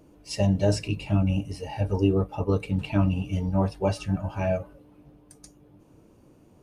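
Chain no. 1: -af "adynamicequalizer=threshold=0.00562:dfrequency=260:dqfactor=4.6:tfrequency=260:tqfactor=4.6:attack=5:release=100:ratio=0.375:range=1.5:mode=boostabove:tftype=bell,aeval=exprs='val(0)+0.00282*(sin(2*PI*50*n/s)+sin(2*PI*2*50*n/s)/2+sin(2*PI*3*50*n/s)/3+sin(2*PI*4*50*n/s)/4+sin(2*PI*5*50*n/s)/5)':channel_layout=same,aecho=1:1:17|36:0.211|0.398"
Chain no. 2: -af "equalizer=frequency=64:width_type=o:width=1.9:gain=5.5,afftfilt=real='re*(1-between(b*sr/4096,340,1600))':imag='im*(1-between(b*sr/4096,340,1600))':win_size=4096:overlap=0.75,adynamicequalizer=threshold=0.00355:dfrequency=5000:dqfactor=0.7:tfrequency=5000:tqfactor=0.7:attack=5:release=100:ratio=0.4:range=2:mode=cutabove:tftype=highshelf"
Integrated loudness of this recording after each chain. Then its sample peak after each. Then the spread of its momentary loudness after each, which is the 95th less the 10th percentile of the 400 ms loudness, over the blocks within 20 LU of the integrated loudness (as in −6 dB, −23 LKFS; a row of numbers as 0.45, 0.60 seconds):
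−26.0, −25.0 LKFS; −9.0, −8.5 dBFS; 7, 8 LU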